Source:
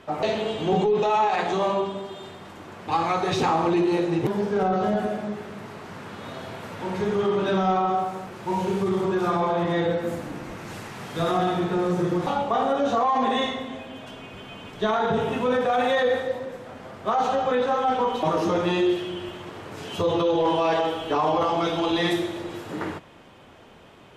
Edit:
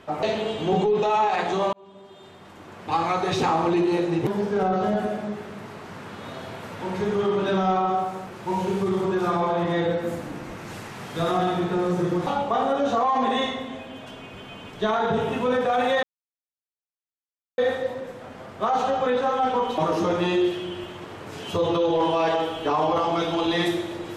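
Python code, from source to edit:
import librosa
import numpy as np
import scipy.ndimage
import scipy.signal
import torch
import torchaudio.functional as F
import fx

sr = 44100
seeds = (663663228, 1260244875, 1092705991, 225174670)

y = fx.edit(x, sr, fx.fade_in_span(start_s=1.73, length_s=1.19),
    fx.insert_silence(at_s=16.03, length_s=1.55), tone=tone)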